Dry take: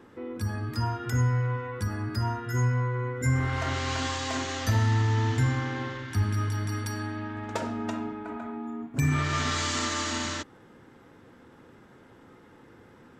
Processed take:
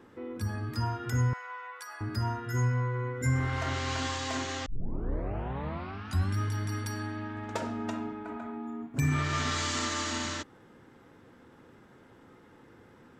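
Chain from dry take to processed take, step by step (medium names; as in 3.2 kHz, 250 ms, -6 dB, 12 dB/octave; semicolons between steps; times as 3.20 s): 1.33–2.01 s: high-pass 750 Hz 24 dB/octave; 4.66 s: tape start 1.72 s; trim -2.5 dB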